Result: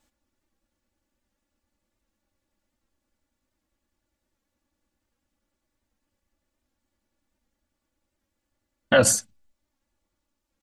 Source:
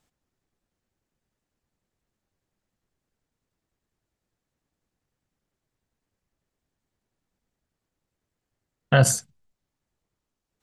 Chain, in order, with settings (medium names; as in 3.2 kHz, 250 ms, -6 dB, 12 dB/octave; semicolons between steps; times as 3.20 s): comb 3.5 ms, depth 98%; warped record 78 rpm, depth 100 cents